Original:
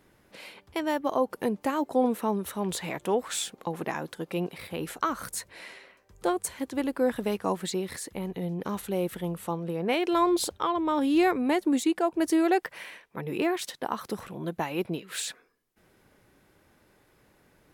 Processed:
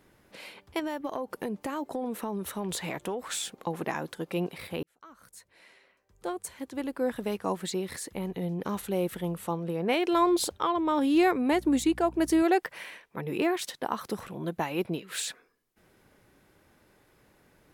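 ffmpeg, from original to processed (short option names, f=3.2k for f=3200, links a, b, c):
-filter_complex "[0:a]asettb=1/sr,asplit=3[a][b][c];[a]atrim=end=0.794[d];[b]atrim=start=0.79:end=3.5,asetpts=PTS-STARTPTS,afade=t=in:d=0.004:c=qsin,afade=t=out:st=2.706:d=0.004:c=qsin,acompressor=threshold=-28dB:ratio=12:attack=3.2:release=140:knee=1:detection=peak[e];[c]atrim=start=3.496[f];[d][e]acrossfade=d=0.004:c1=hsin:c2=qsin[g];[g][f]acrossfade=d=0.004:c1=qsin:c2=hsin,asettb=1/sr,asplit=3[h][i][j];[h]atrim=end=11.524[k];[i]atrim=start=11.52:end=12.43,asetpts=PTS-STARTPTS,afade=t=in:d=0.004:c=qsin,afade=t=out:st=0.906:d=0.004:c=qsin,aeval=exprs='val(0)+0.00562*(sin(2*PI*60*n/s)+sin(2*PI*2*60*n/s)/2+sin(2*PI*3*60*n/s)/3+sin(2*PI*4*60*n/s)/4+sin(2*PI*5*60*n/s)/5)':c=same[l];[j]atrim=start=12.426[m];[k][l]acrossfade=d=0.004:c1=hsin:c2=qsin[n];[n][m]acrossfade=d=0.004:c1=qsin:c2=hsin,asplit=2[o][p];[o]atrim=end=4.83,asetpts=PTS-STARTPTS,afade=t=out:st=4.826:d=0.004:c=hsin[q];[p]atrim=start=4.83,asetpts=PTS-STARTPTS,afade=t=in:d=3.37[r];[q][r]concat=n=2:v=0:a=1"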